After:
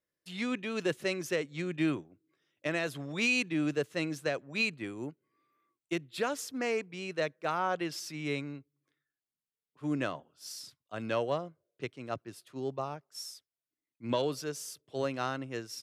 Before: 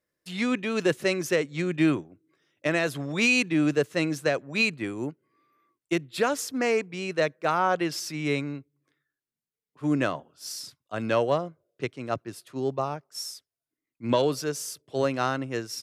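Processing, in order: bell 3200 Hz +2.5 dB; gain -7.5 dB

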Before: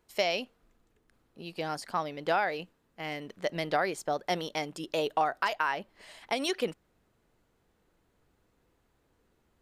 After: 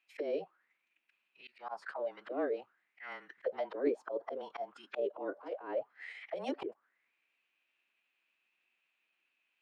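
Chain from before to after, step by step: HPF 240 Hz 24 dB/oct; frequency shift -35 Hz; auto-wah 380–2600 Hz, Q 8.3, down, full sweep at -24.5 dBFS; formant-preserving pitch shift -4 st; auto swell 0.131 s; gain +12.5 dB

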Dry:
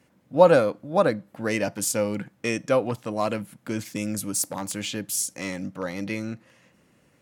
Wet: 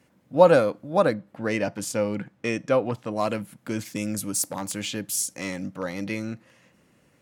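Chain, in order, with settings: 1.14–3.16 high shelf 6800 Hz -12 dB

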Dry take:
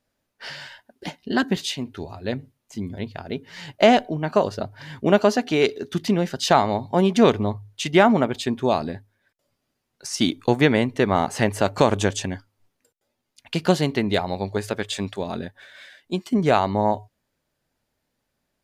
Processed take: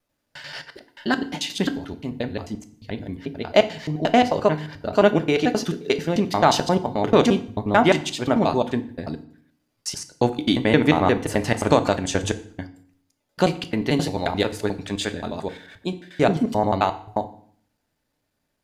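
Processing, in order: slices in reverse order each 88 ms, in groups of 4; FDN reverb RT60 0.55 s, low-frequency decay 1.35×, high-frequency decay 0.9×, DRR 9 dB

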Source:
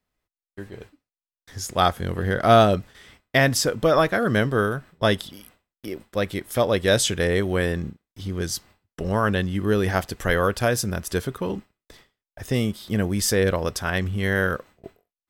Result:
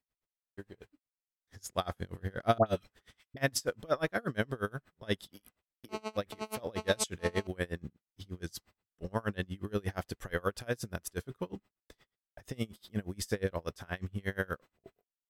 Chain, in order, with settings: 2.58–3.37 dispersion highs, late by 88 ms, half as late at 1300 Hz; 5.89–7.47 GSM buzz -27 dBFS; dB-linear tremolo 8.4 Hz, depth 30 dB; gain -7 dB

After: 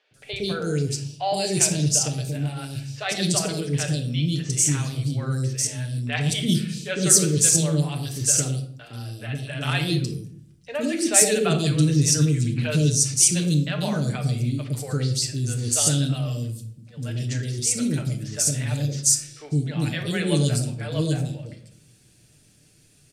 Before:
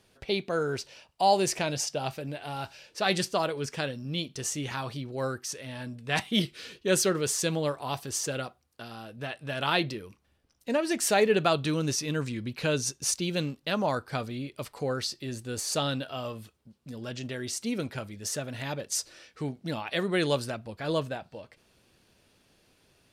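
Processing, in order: graphic EQ 125/1000/8000 Hz +8/-10/+12 dB; three bands offset in time mids, lows, highs 0.11/0.14 s, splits 520/3400 Hz; on a send at -4 dB: reverb RT60 0.60 s, pre-delay 7 ms; on the sum: gain +3 dB

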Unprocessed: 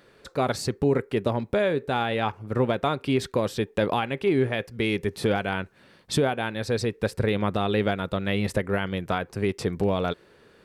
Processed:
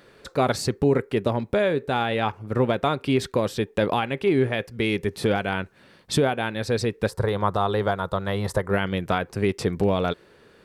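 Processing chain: vocal rider within 3 dB 2 s; 7.09–8.71 fifteen-band EQ 250 Hz -11 dB, 1000 Hz +8 dB, 2500 Hz -12 dB; gain +2 dB

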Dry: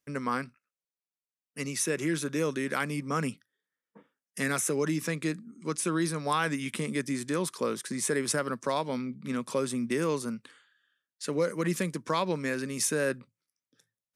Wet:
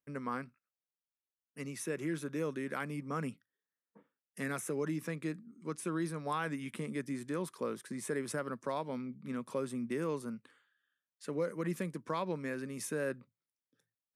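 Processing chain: bell 5900 Hz -9 dB 2.2 oct; gain -6.5 dB

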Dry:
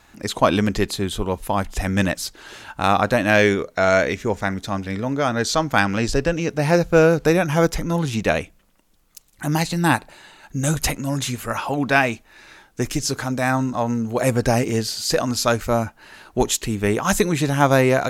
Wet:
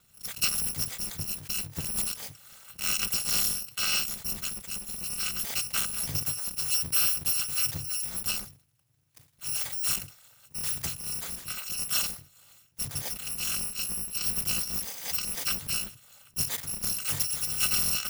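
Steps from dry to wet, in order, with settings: FFT order left unsorted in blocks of 256 samples; ring modulator 120 Hz; sustainer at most 140 dB/s; gain -8 dB

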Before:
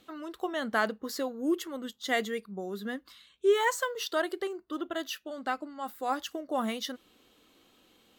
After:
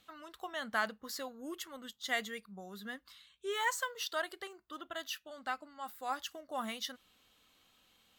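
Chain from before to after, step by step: bell 350 Hz -13.5 dB 1.4 oct; gain -3 dB

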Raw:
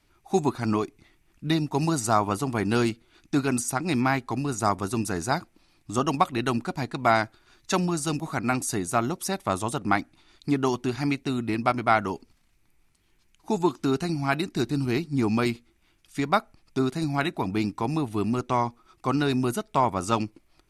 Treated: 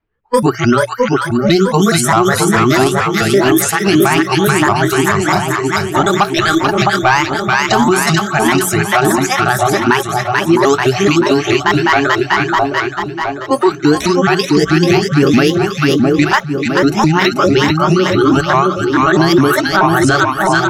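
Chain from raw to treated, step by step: repeated pitch sweeps +6.5 st, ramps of 0.213 s; in parallel at -11 dB: sine folder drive 8 dB, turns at -7 dBFS; on the sum: low-pass opened by the level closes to 1700 Hz, open at -16 dBFS; spectral noise reduction 25 dB; notches 60/120/180 Hz; on a send: split-band echo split 1000 Hz, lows 0.661 s, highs 0.437 s, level -4 dB; on the sum: maximiser +13.5 dB; gain -1 dB

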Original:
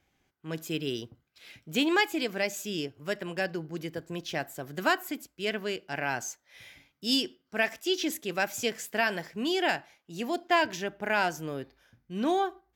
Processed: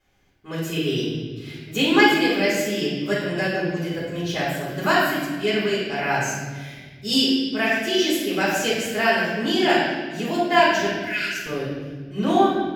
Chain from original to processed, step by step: 10.86–11.46 steep high-pass 1700 Hz 36 dB/oct; reverb RT60 1.4 s, pre-delay 3 ms, DRR -12.5 dB; gain -4 dB

